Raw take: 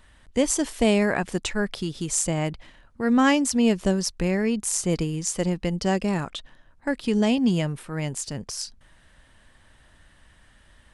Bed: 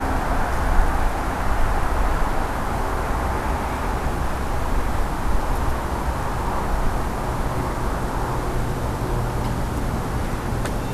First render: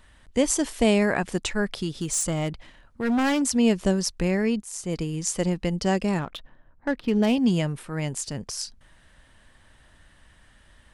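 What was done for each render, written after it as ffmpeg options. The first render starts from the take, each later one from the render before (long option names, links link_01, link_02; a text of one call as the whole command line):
ffmpeg -i in.wav -filter_complex "[0:a]asettb=1/sr,asplit=3[link_01][link_02][link_03];[link_01]atrim=end=1.894[link_04];[link_02]atrim=start=1.89:end=3.42,asetpts=PTS-STARTPTS,afade=type=in:duration=0.004:curve=qsin,afade=type=out:start_time=1.526:duration=0.004:curve=qsin,asoftclip=type=hard:threshold=-20dB[link_05];[link_03]atrim=start=3.416[link_06];[link_04][link_05]acrossfade=duration=0.004:curve1=hsin:curve2=qsin[link_07];[link_07][link_06]acrossfade=duration=0.004:curve1=qsin:curve2=hsin,asettb=1/sr,asplit=3[link_08][link_09][link_10];[link_08]atrim=end=6.194[link_11];[link_09]atrim=start=6.19:end=7.36,asetpts=PTS-STARTPTS,afade=type=in:duration=0.004:curve=qsin,afade=type=out:start_time=1.166:duration=0.004:curve=qsin,adynamicsmooth=sensitivity=3.5:basefreq=1800[link_12];[link_10]atrim=start=7.356[link_13];[link_11][link_12]acrossfade=duration=0.004:curve1=hsin:curve2=qsin[link_14];[link_14][link_13]acrossfade=duration=0.004:curve1=qsin:curve2=hsin,asplit=2[link_15][link_16];[link_15]atrim=end=4.62,asetpts=PTS-STARTPTS,afade=type=out:start_time=4.616:duration=0.004:curve=hsin:silence=0.149624[link_17];[link_16]atrim=start=4.62,asetpts=PTS-STARTPTS,afade=type=in:duration=0.61:silence=0.149624[link_18];[link_17][link_18]concat=n=2:v=0:a=1" out.wav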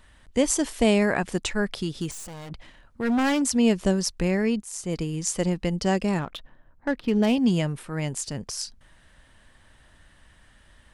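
ffmpeg -i in.wav -filter_complex "[0:a]asettb=1/sr,asplit=3[link_01][link_02][link_03];[link_01]atrim=end=2.114[link_04];[link_02]atrim=start=2.11:end=2.51,asetpts=PTS-STARTPTS,afade=type=in:duration=0.004:curve=qsin,afade=type=out:start_time=0.396:duration=0.004:curve=qsin,aeval=exprs='(tanh(79.4*val(0)+0.55)-tanh(0.55))/79.4':channel_layout=same[link_05];[link_03]atrim=start=2.506[link_06];[link_04][link_05]acrossfade=duration=0.004:curve1=hsin:curve2=qsin[link_07];[link_07][link_06]acrossfade=duration=0.004:curve1=qsin:curve2=hsin" out.wav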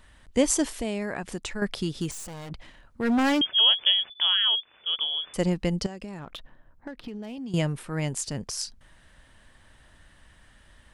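ffmpeg -i in.wav -filter_complex "[0:a]asettb=1/sr,asplit=3[link_01][link_02][link_03];[link_01]atrim=end=0.734[link_04];[link_02]atrim=start=0.73:end=1.62,asetpts=PTS-STARTPTS,afade=type=in:duration=0.004:curve=qsin,afade=type=out:start_time=0.886:duration=0.004:curve=qsin,acompressor=threshold=-34dB:ratio=2:attack=3.2:release=140:knee=1:detection=peak[link_05];[link_03]atrim=start=1.616[link_06];[link_04][link_05]acrossfade=duration=0.004:curve1=hsin:curve2=qsin[link_07];[link_07][link_06]acrossfade=duration=0.004:curve1=qsin:curve2=hsin,asettb=1/sr,asplit=3[link_08][link_09][link_10];[link_08]atrim=end=3.414[link_11];[link_09]atrim=start=3.41:end=5.34,asetpts=PTS-STARTPTS,afade=type=in:duration=0.004:curve=qsin,afade=type=out:start_time=1.926:duration=0.004:curve=qsin,lowpass=frequency=3000:width_type=q:width=0.5098,lowpass=frequency=3000:width_type=q:width=0.6013,lowpass=frequency=3000:width_type=q:width=0.9,lowpass=frequency=3000:width_type=q:width=2.563,afreqshift=-3500[link_12];[link_10]atrim=start=5.336[link_13];[link_11][link_12]acrossfade=duration=0.004:curve1=hsin:curve2=qsin[link_14];[link_14][link_13]acrossfade=duration=0.004:curve1=qsin:curve2=hsin,asettb=1/sr,asplit=3[link_15][link_16][link_17];[link_15]atrim=end=5.864[link_18];[link_16]atrim=start=5.86:end=7.54,asetpts=PTS-STARTPTS,afade=type=in:duration=0.004:curve=qsin,afade=type=out:start_time=1.676:duration=0.004:curve=qsin,acompressor=threshold=-33dB:ratio=16:attack=3.2:release=140:knee=1:detection=peak[link_19];[link_17]atrim=start=7.536[link_20];[link_18][link_19]acrossfade=duration=0.004:curve1=hsin:curve2=qsin[link_21];[link_21][link_20]acrossfade=duration=0.004:curve1=qsin:curve2=hsin" out.wav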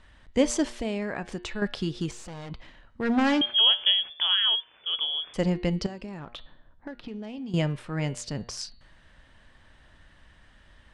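ffmpeg -i in.wav -af "lowpass=5400,bandreject=frequency=118.7:width_type=h:width=4,bandreject=frequency=237.4:width_type=h:width=4,bandreject=frequency=356.1:width_type=h:width=4,bandreject=frequency=474.8:width_type=h:width=4,bandreject=frequency=593.5:width_type=h:width=4,bandreject=frequency=712.2:width_type=h:width=4,bandreject=frequency=830.9:width_type=h:width=4,bandreject=frequency=949.6:width_type=h:width=4,bandreject=frequency=1068.3:width_type=h:width=4,bandreject=frequency=1187:width_type=h:width=4,bandreject=frequency=1305.7:width_type=h:width=4,bandreject=frequency=1424.4:width_type=h:width=4,bandreject=frequency=1543.1:width_type=h:width=4,bandreject=frequency=1661.8:width_type=h:width=4,bandreject=frequency=1780.5:width_type=h:width=4,bandreject=frequency=1899.2:width_type=h:width=4,bandreject=frequency=2017.9:width_type=h:width=4,bandreject=frequency=2136.6:width_type=h:width=4,bandreject=frequency=2255.3:width_type=h:width=4,bandreject=frequency=2374:width_type=h:width=4,bandreject=frequency=2492.7:width_type=h:width=4,bandreject=frequency=2611.4:width_type=h:width=4,bandreject=frequency=2730.1:width_type=h:width=4,bandreject=frequency=2848.8:width_type=h:width=4,bandreject=frequency=2967.5:width_type=h:width=4,bandreject=frequency=3086.2:width_type=h:width=4,bandreject=frequency=3204.9:width_type=h:width=4,bandreject=frequency=3323.6:width_type=h:width=4,bandreject=frequency=3442.3:width_type=h:width=4,bandreject=frequency=3561:width_type=h:width=4,bandreject=frequency=3679.7:width_type=h:width=4,bandreject=frequency=3798.4:width_type=h:width=4,bandreject=frequency=3917.1:width_type=h:width=4,bandreject=frequency=4035.8:width_type=h:width=4,bandreject=frequency=4154.5:width_type=h:width=4,bandreject=frequency=4273.2:width_type=h:width=4,bandreject=frequency=4391.9:width_type=h:width=4,bandreject=frequency=4510.6:width_type=h:width=4,bandreject=frequency=4629.3:width_type=h:width=4" out.wav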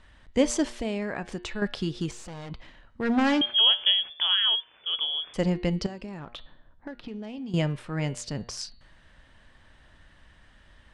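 ffmpeg -i in.wav -af anull out.wav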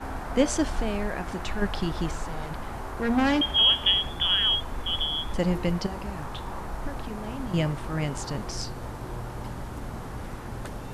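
ffmpeg -i in.wav -i bed.wav -filter_complex "[1:a]volume=-12dB[link_01];[0:a][link_01]amix=inputs=2:normalize=0" out.wav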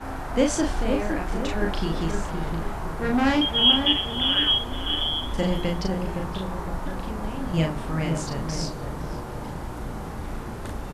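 ffmpeg -i in.wav -filter_complex "[0:a]asplit=2[link_01][link_02];[link_02]adelay=37,volume=-3dB[link_03];[link_01][link_03]amix=inputs=2:normalize=0,asplit=2[link_04][link_05];[link_05]adelay=515,lowpass=frequency=950:poles=1,volume=-4.5dB,asplit=2[link_06][link_07];[link_07]adelay=515,lowpass=frequency=950:poles=1,volume=0.51,asplit=2[link_08][link_09];[link_09]adelay=515,lowpass=frequency=950:poles=1,volume=0.51,asplit=2[link_10][link_11];[link_11]adelay=515,lowpass=frequency=950:poles=1,volume=0.51,asplit=2[link_12][link_13];[link_13]adelay=515,lowpass=frequency=950:poles=1,volume=0.51,asplit=2[link_14][link_15];[link_15]adelay=515,lowpass=frequency=950:poles=1,volume=0.51,asplit=2[link_16][link_17];[link_17]adelay=515,lowpass=frequency=950:poles=1,volume=0.51[link_18];[link_04][link_06][link_08][link_10][link_12][link_14][link_16][link_18]amix=inputs=8:normalize=0" out.wav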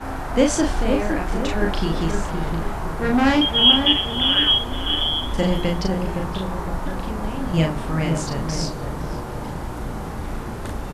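ffmpeg -i in.wav -af "volume=4dB" out.wav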